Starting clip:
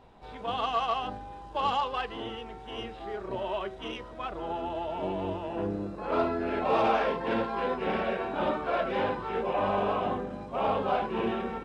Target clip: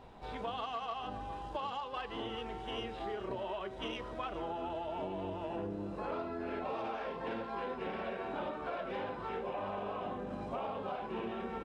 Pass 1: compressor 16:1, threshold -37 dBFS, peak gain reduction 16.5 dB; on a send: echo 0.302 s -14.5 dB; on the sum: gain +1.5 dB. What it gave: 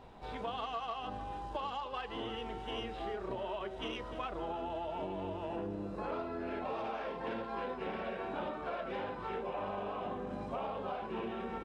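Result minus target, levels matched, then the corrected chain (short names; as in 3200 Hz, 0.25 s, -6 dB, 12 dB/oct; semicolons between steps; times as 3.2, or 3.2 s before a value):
echo 0.109 s early
compressor 16:1, threshold -37 dBFS, peak gain reduction 16.5 dB; on a send: echo 0.411 s -14.5 dB; on the sum: gain +1.5 dB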